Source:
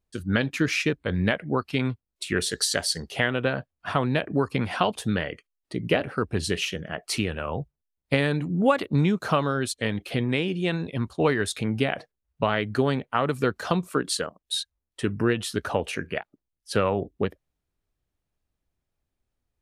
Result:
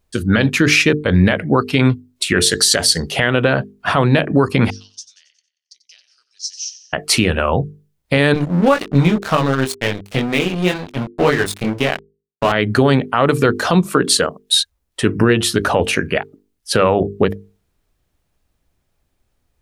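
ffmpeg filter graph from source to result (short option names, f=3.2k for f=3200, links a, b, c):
-filter_complex "[0:a]asettb=1/sr,asplit=3[a][b][c];[a]atrim=end=4.704[d];[b]atrim=start=4.7:end=6.93,asetpts=PTS-STARTPTS,afade=t=in:d=0.004:c=qsin,afade=t=out:st=2.226:d=0.004:c=qsin,asuperpass=centerf=5700:order=4:qfactor=4.4,aecho=1:1:91|182|273|364|455:0.2|0.0958|0.046|0.0221|0.0106,atrim=end_sample=98343[e];[c]atrim=start=6.926[f];[d][e]acrossfade=d=0.004:c1=hsin:c2=qsin[g];[g][f]acrossfade=d=0.004:c1=qsin:c2=hsin,asettb=1/sr,asplit=3[h][i][j];[h]atrim=end=8.344[k];[i]atrim=start=8.34:end=12.52,asetpts=PTS-STARTPTS,afade=t=in:d=0.004:c=qsin,afade=t=out:st=4.176:d=0.004:c=qsin,flanger=delay=20:depth=3:speed=2,aeval=exprs='sgn(val(0))*max(abs(val(0))-0.0168,0)':c=same[l];[j]atrim=start=12.516[m];[k][l]acrossfade=d=0.004:c1=hsin:c2=qsin[n];[n][m]acrossfade=d=0.004:c1=qsin:c2=hsin,bandreject=f=50:t=h:w=6,bandreject=f=100:t=h:w=6,bandreject=f=150:t=h:w=6,bandreject=f=200:t=h:w=6,bandreject=f=250:t=h:w=6,bandreject=f=300:t=h:w=6,bandreject=f=350:t=h:w=6,bandreject=f=400:t=h:w=6,bandreject=f=450:t=h:w=6,alimiter=level_in=15dB:limit=-1dB:release=50:level=0:latency=1,volume=-1dB"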